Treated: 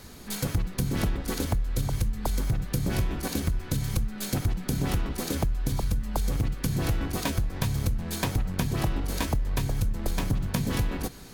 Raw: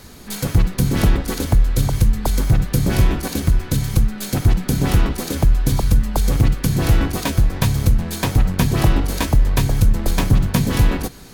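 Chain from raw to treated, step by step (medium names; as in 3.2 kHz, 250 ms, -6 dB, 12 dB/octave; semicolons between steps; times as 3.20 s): compression, threshold -18 dBFS, peak gain reduction 9.5 dB; trim -5 dB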